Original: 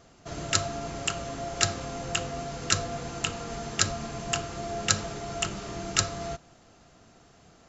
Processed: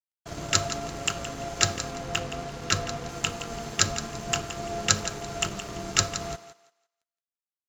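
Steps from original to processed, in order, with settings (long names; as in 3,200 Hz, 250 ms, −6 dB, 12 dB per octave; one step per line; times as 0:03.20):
0:01.91–0:03.09: high-frequency loss of the air 61 metres
dead-zone distortion −45 dBFS
on a send: feedback echo with a high-pass in the loop 169 ms, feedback 25%, high-pass 430 Hz, level −11.5 dB
on the sum: level +2.5 dB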